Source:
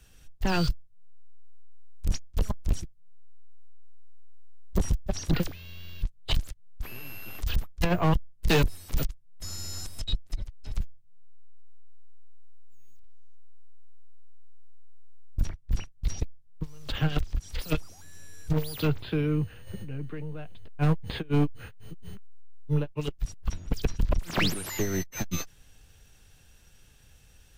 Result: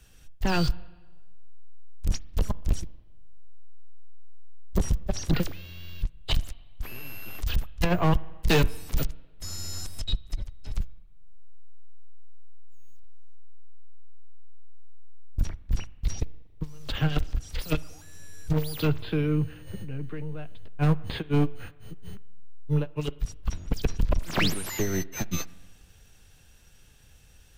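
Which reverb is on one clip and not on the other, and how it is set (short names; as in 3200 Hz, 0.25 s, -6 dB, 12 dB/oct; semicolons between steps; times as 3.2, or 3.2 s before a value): spring tank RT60 1.3 s, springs 39/46/60 ms, chirp 35 ms, DRR 19.5 dB; gain +1 dB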